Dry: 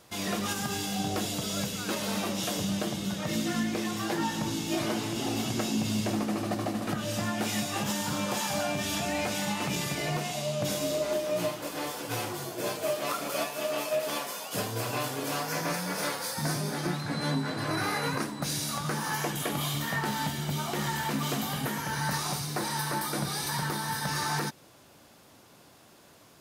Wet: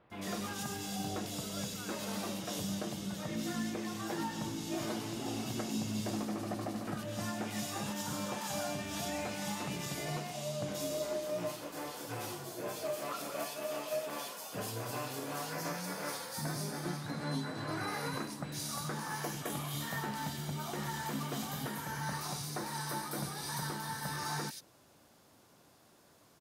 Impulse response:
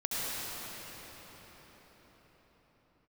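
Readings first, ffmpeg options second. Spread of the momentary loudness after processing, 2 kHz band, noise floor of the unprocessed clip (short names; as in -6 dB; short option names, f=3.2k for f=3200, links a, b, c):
3 LU, -8.5 dB, -56 dBFS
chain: -filter_complex "[0:a]acrossover=split=2700[a][b];[b]adelay=100[c];[a][c]amix=inputs=2:normalize=0,volume=-7dB"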